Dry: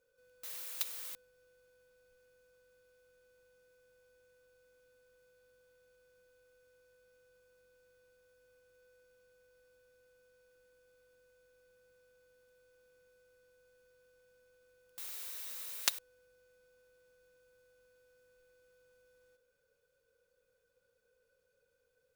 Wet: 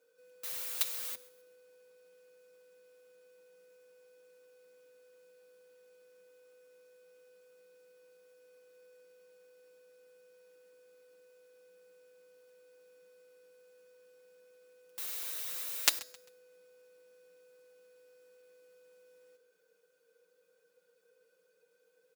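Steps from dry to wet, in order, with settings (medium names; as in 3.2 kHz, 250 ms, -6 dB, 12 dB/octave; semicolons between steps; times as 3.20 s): Chebyshev high-pass 190 Hz, order 4; comb 6.4 ms, depth 76%; de-hum 321.8 Hz, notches 36; frequency-shifting echo 132 ms, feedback 34%, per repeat -59 Hz, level -21 dB; trim +4 dB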